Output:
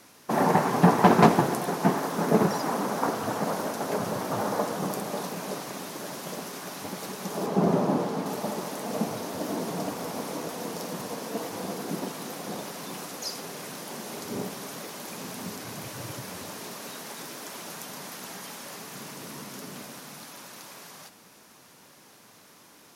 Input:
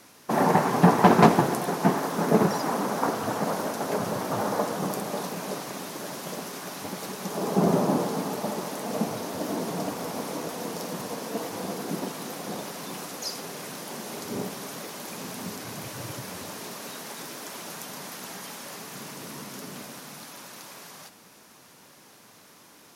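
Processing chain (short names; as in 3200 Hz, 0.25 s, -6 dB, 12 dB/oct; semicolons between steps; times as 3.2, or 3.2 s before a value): 7.46–8.26 high shelf 5600 Hz -9.5 dB; gain -1 dB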